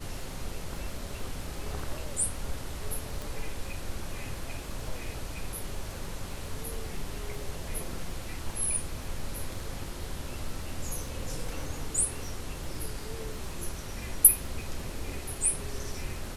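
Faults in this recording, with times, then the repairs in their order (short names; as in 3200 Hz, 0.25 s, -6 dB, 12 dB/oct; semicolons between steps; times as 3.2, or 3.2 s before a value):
crackle 40/s -40 dBFS
3.22 pop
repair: de-click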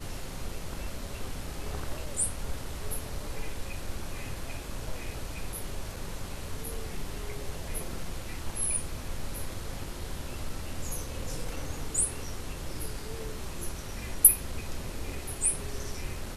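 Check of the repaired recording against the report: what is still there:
none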